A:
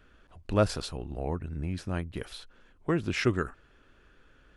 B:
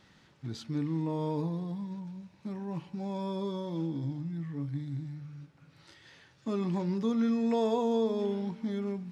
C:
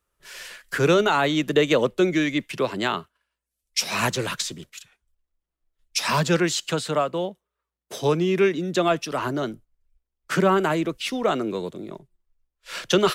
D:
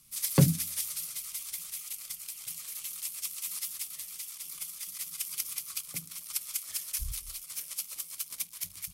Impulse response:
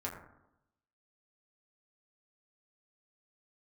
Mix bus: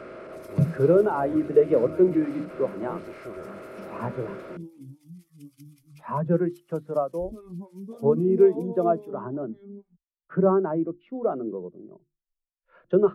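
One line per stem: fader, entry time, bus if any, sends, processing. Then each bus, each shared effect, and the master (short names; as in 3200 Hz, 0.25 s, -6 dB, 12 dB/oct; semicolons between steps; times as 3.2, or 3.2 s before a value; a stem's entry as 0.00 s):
-16.5 dB, 0.00 s, no send, per-bin compression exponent 0.2; bell 9500 Hz +13 dB 0.66 oct; overdrive pedal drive 32 dB, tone 1200 Hz, clips at -3 dBFS
+1.0 dB, 0.85 s, no send, photocell phaser 3.7 Hz
+1.5 dB, 0.00 s, no send, LPF 1100 Hz 12 dB/oct; notches 50/100/150/200/250/300/350 Hz
+0.5 dB, 0.20 s, no send, high shelf 5000 Hz -10 dB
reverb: off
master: spectral expander 1.5:1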